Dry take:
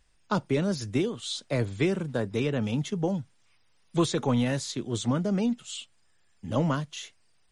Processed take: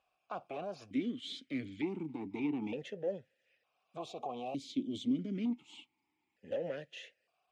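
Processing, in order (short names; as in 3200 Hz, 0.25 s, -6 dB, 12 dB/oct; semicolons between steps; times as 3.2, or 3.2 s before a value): one diode to ground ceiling -30.5 dBFS; limiter -23.5 dBFS, peak gain reduction 9 dB; 3.99–5.19 Butterworth band-stop 1600 Hz, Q 0.98; vowel sequencer 1.1 Hz; gain +7.5 dB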